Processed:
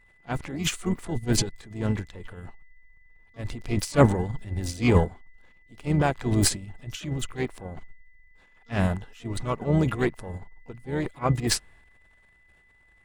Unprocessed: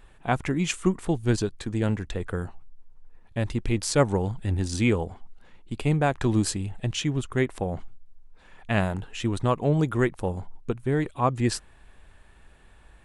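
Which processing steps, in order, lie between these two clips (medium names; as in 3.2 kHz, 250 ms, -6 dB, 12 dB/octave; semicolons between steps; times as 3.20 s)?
transient shaper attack -5 dB, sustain +10 dB; harmony voices -12 st -15 dB, +3 st -12 dB, +12 st -14 dB; whistle 2 kHz -45 dBFS; upward expansion 2.5:1, over -30 dBFS; trim +5.5 dB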